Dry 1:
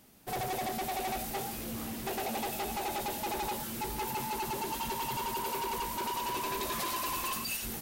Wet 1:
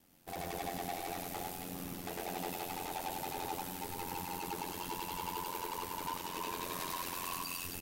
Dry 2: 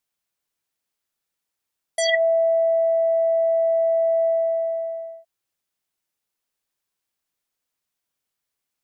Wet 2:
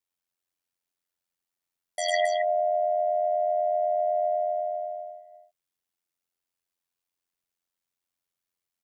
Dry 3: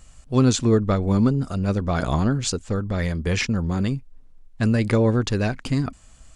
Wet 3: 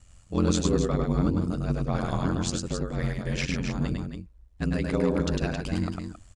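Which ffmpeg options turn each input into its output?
-af "aecho=1:1:102|268.2:0.708|0.447,aeval=exprs='val(0)*sin(2*PI*44*n/s)':c=same,volume=0.596"

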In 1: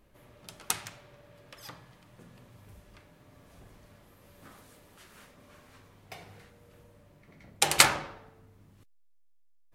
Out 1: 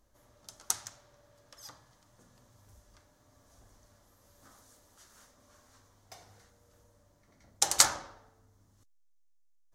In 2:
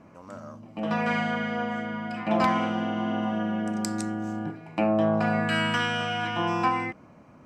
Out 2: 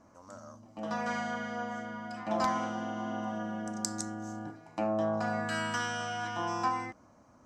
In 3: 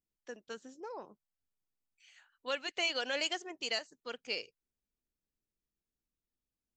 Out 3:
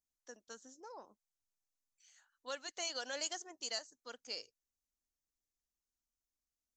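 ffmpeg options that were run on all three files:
-af "equalizer=f=160:t=o:w=0.67:g=-11,equalizer=f=400:t=o:w=0.67:g=-6,equalizer=f=2500:t=o:w=0.67:g=-11,equalizer=f=6300:t=o:w=0.67:g=10,volume=0.596"

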